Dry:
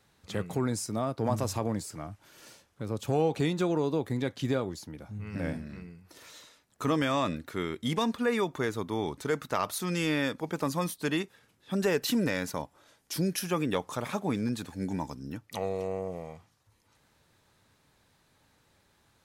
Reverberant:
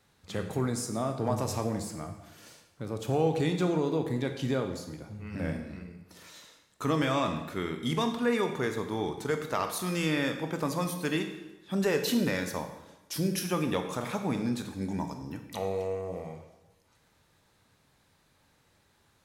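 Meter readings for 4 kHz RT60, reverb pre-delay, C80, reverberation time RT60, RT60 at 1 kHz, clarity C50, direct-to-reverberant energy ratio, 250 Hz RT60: 0.85 s, 16 ms, 10.0 dB, 1.0 s, 1.0 s, 8.0 dB, 5.5 dB, 1.1 s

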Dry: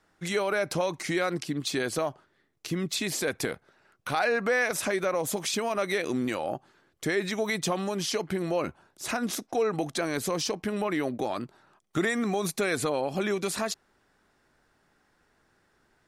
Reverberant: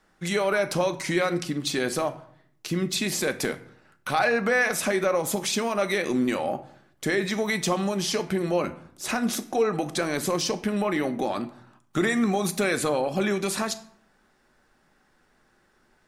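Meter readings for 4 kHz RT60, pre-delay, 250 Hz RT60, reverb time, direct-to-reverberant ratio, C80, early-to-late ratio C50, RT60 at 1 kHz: 0.40 s, 3 ms, 0.80 s, 0.65 s, 8.0 dB, 18.5 dB, 15.0 dB, 0.65 s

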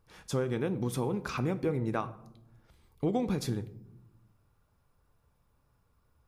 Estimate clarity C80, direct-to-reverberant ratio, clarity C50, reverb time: 18.5 dB, 11.0 dB, 16.0 dB, 0.85 s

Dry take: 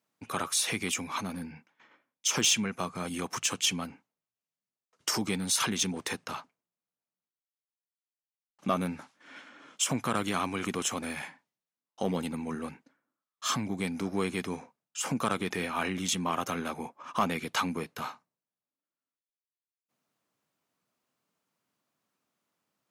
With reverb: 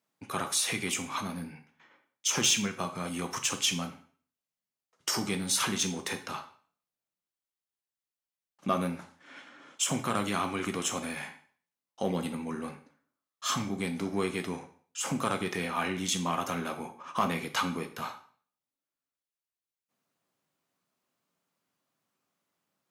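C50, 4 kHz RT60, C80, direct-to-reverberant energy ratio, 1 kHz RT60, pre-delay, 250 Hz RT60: 12.0 dB, 0.45 s, 16.0 dB, 6.0 dB, 0.45 s, 4 ms, 0.45 s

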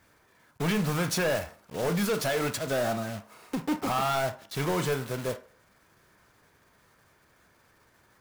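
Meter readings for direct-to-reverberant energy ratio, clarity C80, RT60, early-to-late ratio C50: 9.0 dB, 20.0 dB, 0.45 s, 15.0 dB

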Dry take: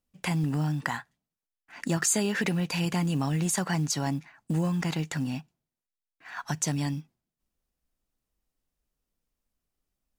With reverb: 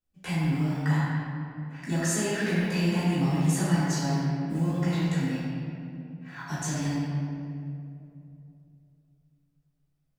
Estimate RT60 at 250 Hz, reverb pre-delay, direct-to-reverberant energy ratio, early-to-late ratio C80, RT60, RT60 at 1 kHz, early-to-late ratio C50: 3.5 s, 3 ms, -13.5 dB, -1.5 dB, 2.8 s, 2.3 s, -4.0 dB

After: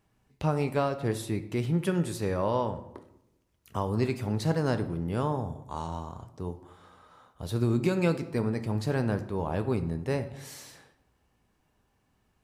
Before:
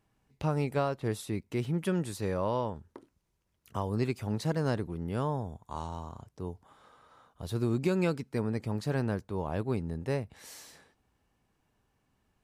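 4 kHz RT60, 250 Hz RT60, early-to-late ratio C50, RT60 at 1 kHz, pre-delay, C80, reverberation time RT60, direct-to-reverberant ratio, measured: 0.55 s, 1.1 s, 12.5 dB, 0.80 s, 6 ms, 15.5 dB, 0.85 s, 9.0 dB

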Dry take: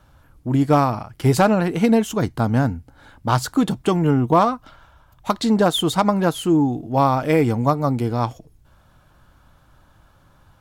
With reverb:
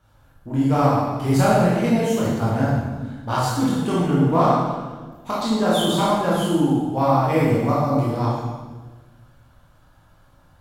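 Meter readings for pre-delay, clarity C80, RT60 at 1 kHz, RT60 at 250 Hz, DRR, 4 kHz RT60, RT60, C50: 15 ms, 1.5 dB, 1.2 s, 1.6 s, -8.0 dB, 1.2 s, 1.3 s, -2.0 dB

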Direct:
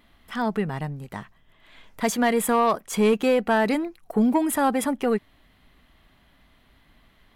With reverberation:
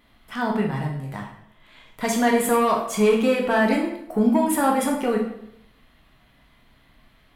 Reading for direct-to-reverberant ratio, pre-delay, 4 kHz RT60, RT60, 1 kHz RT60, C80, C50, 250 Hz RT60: -1.0 dB, 10 ms, 0.60 s, 0.75 s, 0.70 s, 9.0 dB, 5.5 dB, 0.85 s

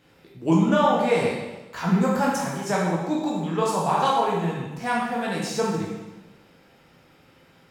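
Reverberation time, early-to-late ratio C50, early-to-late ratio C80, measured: 1.1 s, 0.5 dB, 3.5 dB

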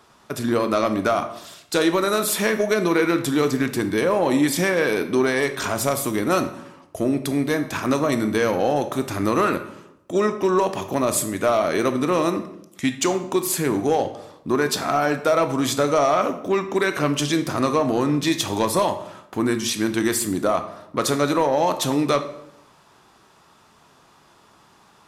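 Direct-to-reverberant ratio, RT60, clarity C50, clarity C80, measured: 8.0 dB, 0.80 s, 11.0 dB, 14.0 dB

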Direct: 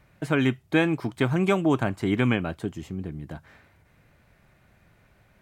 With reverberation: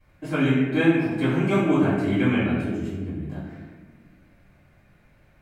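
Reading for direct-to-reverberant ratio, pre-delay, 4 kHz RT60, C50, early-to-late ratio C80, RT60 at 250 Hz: -16.5 dB, 3 ms, 0.80 s, -0.5 dB, 2.0 dB, 2.1 s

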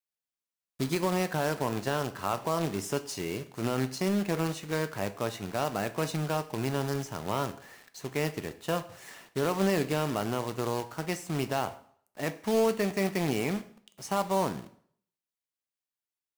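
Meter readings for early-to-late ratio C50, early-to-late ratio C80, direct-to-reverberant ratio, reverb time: 15.5 dB, 18.5 dB, 10.5 dB, 0.60 s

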